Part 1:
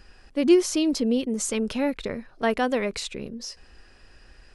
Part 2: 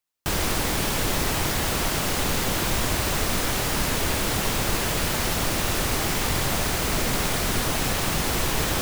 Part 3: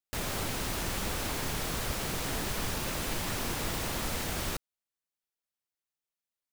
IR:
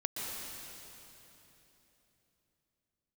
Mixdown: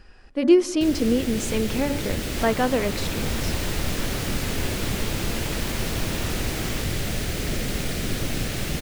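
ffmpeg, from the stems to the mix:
-filter_complex "[0:a]bandreject=f=286.7:t=h:w=4,bandreject=f=573.4:t=h:w=4,bandreject=f=860.1:t=h:w=4,bandreject=f=1.1468k:t=h:w=4,bandreject=f=1.4335k:t=h:w=4,bandreject=f=1.7202k:t=h:w=4,bandreject=f=2.0069k:t=h:w=4,volume=1dB,asplit=3[a][b][c];[b]volume=-18.5dB[d];[1:a]equalizer=f=980:t=o:w=1.1:g=-13.5,adelay=550,volume=-3.5dB,asplit=2[e][f];[f]volume=-6.5dB[g];[2:a]adelay=2250,volume=0dB[h];[c]apad=whole_len=412899[i];[e][i]sidechaincompress=threshold=-24dB:ratio=8:attack=16:release=913[j];[3:a]atrim=start_sample=2205[k];[d][g]amix=inputs=2:normalize=0[l];[l][k]afir=irnorm=-1:irlink=0[m];[a][j][h][m]amix=inputs=4:normalize=0,highshelf=f=4.1k:g=-7.5"

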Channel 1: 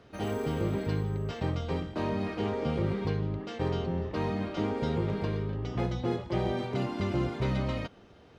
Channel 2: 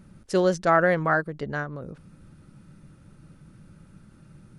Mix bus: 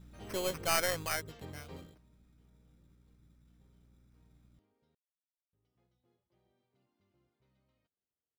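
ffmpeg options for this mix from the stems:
-filter_complex "[0:a]volume=-17dB,asplit=3[a][b][c];[a]atrim=end=4.95,asetpts=PTS-STARTPTS,afade=t=out:st=4.946:d=0.004:c=hsin[d];[b]atrim=start=4.95:end=5.53,asetpts=PTS-STARTPTS,volume=0[e];[c]atrim=start=5.53,asetpts=PTS-STARTPTS,afade=t=in:d=0.004:c=hsin[f];[d][e][f]concat=n=3:v=0:a=1[g];[1:a]acrossover=split=410[h][i];[h]acompressor=threshold=-32dB:ratio=6[j];[j][i]amix=inputs=2:normalize=0,acrusher=samples=12:mix=1:aa=0.000001,aeval=exprs='val(0)+0.00794*(sin(2*PI*60*n/s)+sin(2*PI*2*60*n/s)/2+sin(2*PI*3*60*n/s)/3+sin(2*PI*4*60*n/s)/4+sin(2*PI*5*60*n/s)/5)':c=same,volume=-12dB,afade=t=out:st=0.93:d=0.53:silence=0.316228,asplit=2[k][l];[l]apad=whole_len=374193[m];[g][m]sidechaingate=range=-30dB:threshold=-58dB:ratio=16:detection=peak[n];[n][k]amix=inputs=2:normalize=0,highshelf=f=3.1k:g=7,aeval=exprs='0.224*(cos(1*acos(clip(val(0)/0.224,-1,1)))-cos(1*PI/2))+0.0251*(cos(6*acos(clip(val(0)/0.224,-1,1)))-cos(6*PI/2))':c=same"

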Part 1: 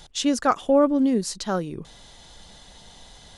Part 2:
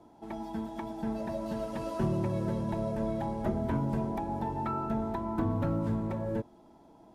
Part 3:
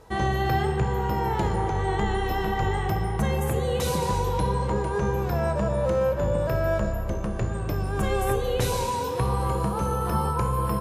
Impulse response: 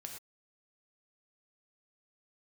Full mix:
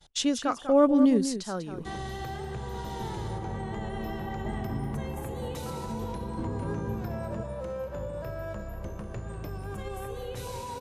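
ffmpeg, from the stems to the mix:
-filter_complex "[0:a]tremolo=f=1:d=0.64,volume=0dB,asplit=3[a][b][c];[b]volume=-10dB[d];[1:a]lowshelf=f=490:g=12,adelay=1000,volume=-14dB[e];[2:a]alimiter=limit=-19.5dB:level=0:latency=1:release=105,adelay=1750,volume=-8.5dB,asplit=2[f][g];[g]volume=-12.5dB[h];[c]apad=whole_len=359339[i];[e][i]sidechaincompress=threshold=-47dB:ratio=8:attack=16:release=1320[j];[d][h]amix=inputs=2:normalize=0,aecho=0:1:195:1[k];[a][j][f][k]amix=inputs=4:normalize=0,agate=range=-33dB:threshold=-39dB:ratio=3:detection=peak"

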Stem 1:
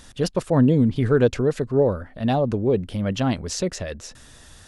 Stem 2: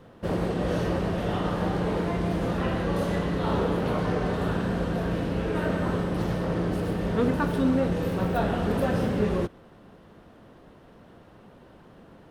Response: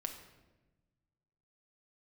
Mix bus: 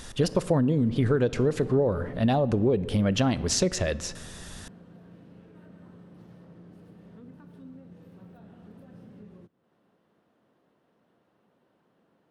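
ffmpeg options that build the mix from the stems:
-filter_complex "[0:a]volume=1.5dB,asplit=2[a][b];[b]volume=-8dB[c];[1:a]highpass=160,acrossover=split=230[d][e];[e]acompressor=threshold=-42dB:ratio=4[f];[d][f]amix=inputs=2:normalize=0,volume=-6.5dB,afade=t=out:st=1.79:d=0.6:silence=0.316228[g];[2:a]atrim=start_sample=2205[h];[c][h]afir=irnorm=-1:irlink=0[i];[a][g][i]amix=inputs=3:normalize=0,acompressor=threshold=-19dB:ratio=12"

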